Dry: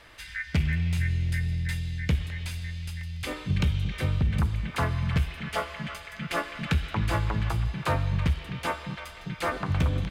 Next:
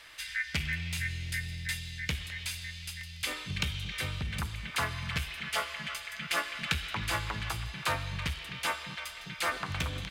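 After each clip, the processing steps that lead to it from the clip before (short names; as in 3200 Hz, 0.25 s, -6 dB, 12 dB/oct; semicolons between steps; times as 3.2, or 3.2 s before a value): tilt shelf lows -8.5 dB, about 1100 Hz; gain -3 dB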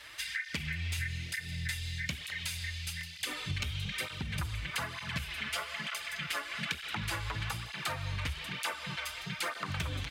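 compressor, threshold -35 dBFS, peak gain reduction 10.5 dB; tape flanging out of phase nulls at 1.1 Hz, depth 6.3 ms; gain +5.5 dB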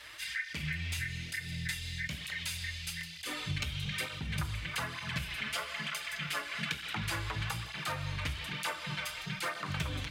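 reverb RT60 0.40 s, pre-delay 6 ms, DRR 11 dB; attack slew limiter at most 210 dB/s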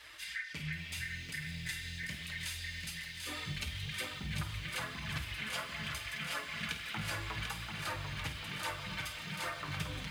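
flutter echo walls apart 8.8 m, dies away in 0.25 s; flange 0.77 Hz, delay 2.4 ms, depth 5.2 ms, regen -56%; lo-fi delay 0.742 s, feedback 55%, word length 10-bit, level -5.5 dB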